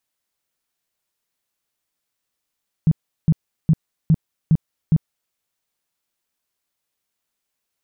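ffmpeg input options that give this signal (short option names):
-f lavfi -i "aevalsrc='0.316*sin(2*PI*159*mod(t,0.41))*lt(mod(t,0.41),7/159)':d=2.46:s=44100"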